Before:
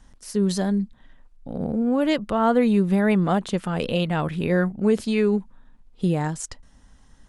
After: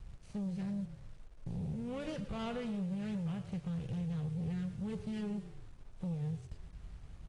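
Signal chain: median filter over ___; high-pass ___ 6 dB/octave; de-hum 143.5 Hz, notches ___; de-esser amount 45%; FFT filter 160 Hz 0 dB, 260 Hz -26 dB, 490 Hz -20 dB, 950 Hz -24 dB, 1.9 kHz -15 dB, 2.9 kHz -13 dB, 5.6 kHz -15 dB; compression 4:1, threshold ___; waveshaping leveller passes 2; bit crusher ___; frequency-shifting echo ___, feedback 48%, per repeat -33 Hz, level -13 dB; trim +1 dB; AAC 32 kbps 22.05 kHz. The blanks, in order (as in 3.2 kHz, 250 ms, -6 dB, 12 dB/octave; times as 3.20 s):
25 samples, 52 Hz, 31, -44 dBFS, 11-bit, 110 ms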